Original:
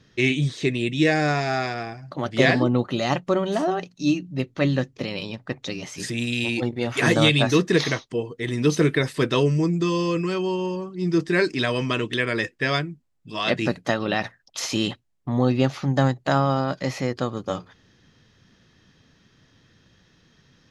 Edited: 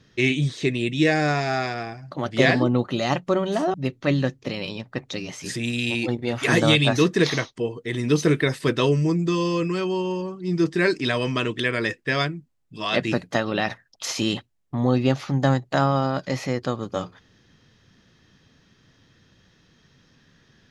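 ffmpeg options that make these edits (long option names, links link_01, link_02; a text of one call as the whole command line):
ffmpeg -i in.wav -filter_complex "[0:a]asplit=2[link_01][link_02];[link_01]atrim=end=3.742[link_03];[link_02]atrim=start=4.278[link_04];[link_03][link_04]acrossfade=duration=0.004:curve1=hsin:curve2=hsin" out.wav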